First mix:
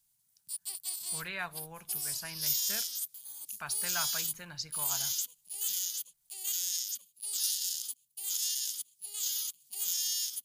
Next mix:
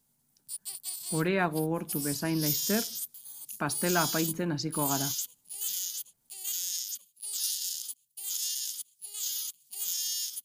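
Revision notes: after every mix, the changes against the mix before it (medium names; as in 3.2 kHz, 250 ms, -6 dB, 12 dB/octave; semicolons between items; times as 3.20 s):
speech: remove amplifier tone stack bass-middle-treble 10-0-10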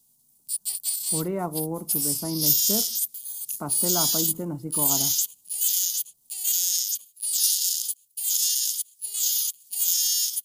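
speech: add Savitzky-Golay filter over 65 samples; background: add treble shelf 2.8 kHz +11 dB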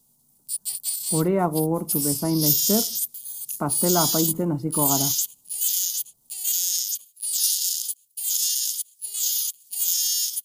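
speech +7.0 dB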